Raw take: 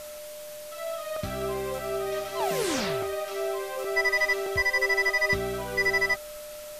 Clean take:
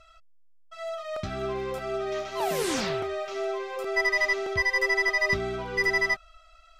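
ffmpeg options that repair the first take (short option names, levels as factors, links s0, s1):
-af "bandreject=f=600:w=30,afftdn=nr=13:nf=-41"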